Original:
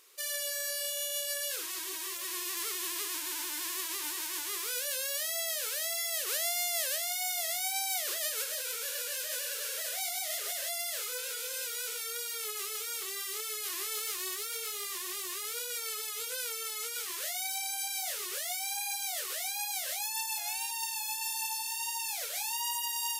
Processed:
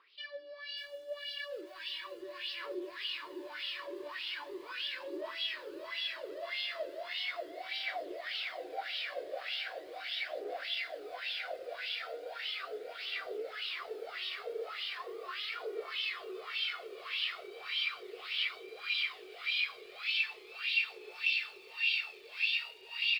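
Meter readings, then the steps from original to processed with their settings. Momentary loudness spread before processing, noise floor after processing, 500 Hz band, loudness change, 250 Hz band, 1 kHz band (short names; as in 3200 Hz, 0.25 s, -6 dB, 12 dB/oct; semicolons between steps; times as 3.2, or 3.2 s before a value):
4 LU, -52 dBFS, +2.5 dB, -4.0 dB, n/a, -4.5 dB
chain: bell 1200 Hz -4 dB 2 oct; in parallel at +1.5 dB: limiter -27.5 dBFS, peak gain reduction 10 dB; on the sum: high-pass sweep 220 Hz -> 2600 Hz, 13.76–16.14; on a send: diffused feedback echo 1.059 s, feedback 78%, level -3.5 dB; on the sum: downsampling 11025 Hz; bell 260 Hz +3.5 dB 0.4 oct; wah 1.7 Hz 370–3200 Hz, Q 4.6; phaser 0.38 Hz, delay 1.9 ms, feedback 36%; lo-fi delay 0.596 s, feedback 35%, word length 10-bit, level -9 dB; gain +2.5 dB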